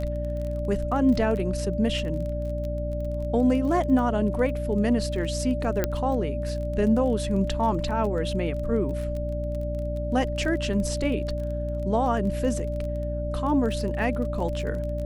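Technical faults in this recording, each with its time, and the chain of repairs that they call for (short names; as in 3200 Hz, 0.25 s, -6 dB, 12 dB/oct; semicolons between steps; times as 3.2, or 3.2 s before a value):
crackle 23/s -32 dBFS
hum 60 Hz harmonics 5 -30 dBFS
tone 590 Hz -31 dBFS
5.84 pop -9 dBFS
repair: de-click; notch 590 Hz, Q 30; de-hum 60 Hz, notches 5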